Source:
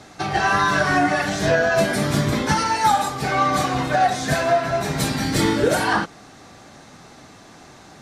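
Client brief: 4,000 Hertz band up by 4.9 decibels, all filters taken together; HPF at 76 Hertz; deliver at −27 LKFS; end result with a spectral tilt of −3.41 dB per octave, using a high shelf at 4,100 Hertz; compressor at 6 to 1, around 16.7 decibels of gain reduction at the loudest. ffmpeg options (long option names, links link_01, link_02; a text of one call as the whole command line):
ffmpeg -i in.wav -af "highpass=76,equalizer=frequency=4000:width_type=o:gain=3,highshelf=frequency=4100:gain=5,acompressor=threshold=-32dB:ratio=6,volume=7dB" out.wav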